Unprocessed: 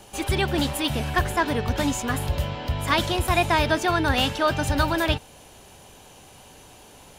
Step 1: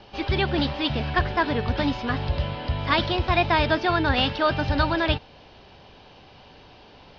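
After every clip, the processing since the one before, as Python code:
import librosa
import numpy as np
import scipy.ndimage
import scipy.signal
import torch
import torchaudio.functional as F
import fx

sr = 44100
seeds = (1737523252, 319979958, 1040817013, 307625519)

y = scipy.signal.sosfilt(scipy.signal.butter(12, 5200.0, 'lowpass', fs=sr, output='sos'), x)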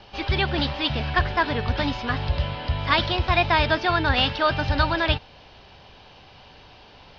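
y = fx.peak_eq(x, sr, hz=300.0, db=-5.5, octaves=2.2)
y = y * 10.0 ** (2.5 / 20.0)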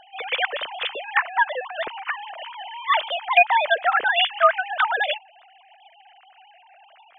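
y = fx.sine_speech(x, sr)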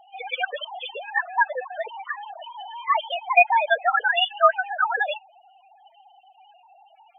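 y = fx.spec_topn(x, sr, count=8)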